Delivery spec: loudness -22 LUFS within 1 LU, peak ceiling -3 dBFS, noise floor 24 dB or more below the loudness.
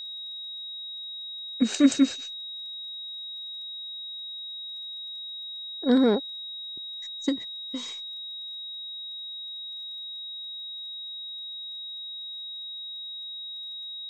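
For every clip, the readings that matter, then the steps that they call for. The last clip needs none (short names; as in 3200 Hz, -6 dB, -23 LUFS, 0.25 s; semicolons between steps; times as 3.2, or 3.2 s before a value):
ticks 20/s; steady tone 3800 Hz; tone level -35 dBFS; loudness -30.5 LUFS; peak -8.0 dBFS; loudness target -22.0 LUFS
-> de-click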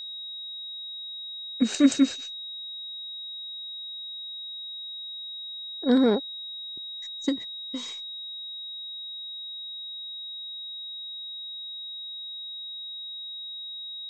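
ticks 0/s; steady tone 3800 Hz; tone level -35 dBFS
-> notch 3800 Hz, Q 30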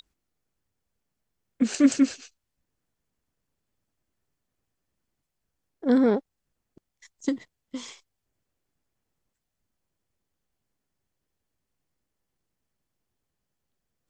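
steady tone none; loudness -24.5 LUFS; peak -8.5 dBFS; loudness target -22.0 LUFS
-> gain +2.5 dB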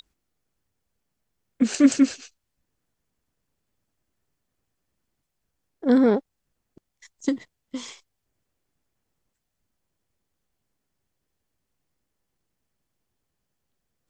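loudness -22.0 LUFS; peak -6.0 dBFS; noise floor -80 dBFS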